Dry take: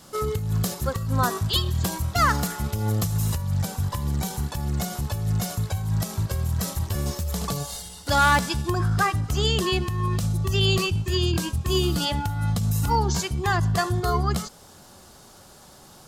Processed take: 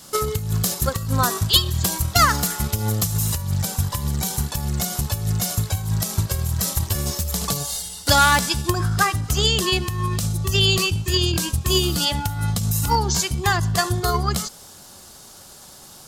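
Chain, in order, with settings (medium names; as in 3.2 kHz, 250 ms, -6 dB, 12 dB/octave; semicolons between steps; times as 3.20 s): transient shaper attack +7 dB, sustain +1 dB; treble shelf 2.8 kHz +9 dB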